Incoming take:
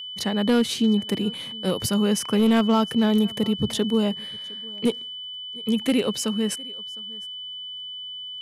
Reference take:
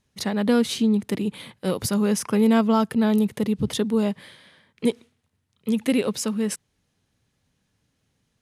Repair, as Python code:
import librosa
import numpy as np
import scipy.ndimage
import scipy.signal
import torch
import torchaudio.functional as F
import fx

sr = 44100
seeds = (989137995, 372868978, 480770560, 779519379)

y = fx.fix_declip(x, sr, threshold_db=-13.5)
y = fx.fix_declick_ar(y, sr, threshold=6.5)
y = fx.notch(y, sr, hz=3000.0, q=30.0)
y = fx.fix_echo_inverse(y, sr, delay_ms=709, level_db=-23.5)